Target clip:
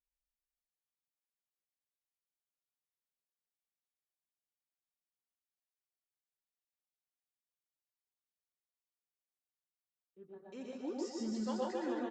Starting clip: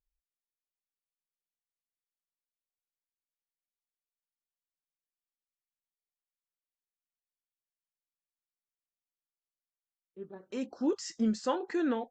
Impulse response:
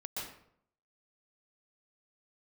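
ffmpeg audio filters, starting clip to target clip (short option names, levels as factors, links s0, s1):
-filter_complex "[0:a]aecho=1:1:150|262.5|346.9|410.2|457.6:0.631|0.398|0.251|0.158|0.1[s0];[1:a]atrim=start_sample=2205,afade=t=out:st=0.18:d=0.01,atrim=end_sample=8379[s1];[s0][s1]afir=irnorm=-1:irlink=0,volume=0.473"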